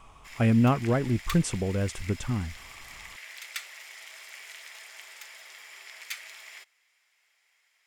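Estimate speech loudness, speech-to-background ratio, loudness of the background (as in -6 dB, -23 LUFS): -26.5 LUFS, 16.0 dB, -42.5 LUFS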